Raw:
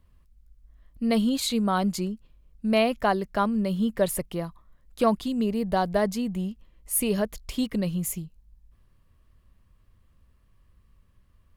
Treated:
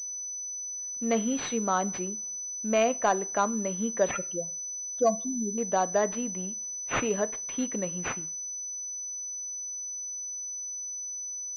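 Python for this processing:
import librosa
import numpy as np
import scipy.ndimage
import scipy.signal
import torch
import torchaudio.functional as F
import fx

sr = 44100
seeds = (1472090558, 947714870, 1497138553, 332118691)

y = fx.spec_expand(x, sr, power=3.1, at=(4.11, 5.58))
y = scipy.signal.sosfilt(scipy.signal.butter(2, 310.0, 'highpass', fs=sr, output='sos'), y)
y = 10.0 ** (-11.5 / 20.0) * np.tanh(y / 10.0 ** (-11.5 / 20.0))
y = fx.rev_double_slope(y, sr, seeds[0], early_s=0.38, late_s=2.1, knee_db=-27, drr_db=14.5)
y = fx.pwm(y, sr, carrier_hz=6000.0)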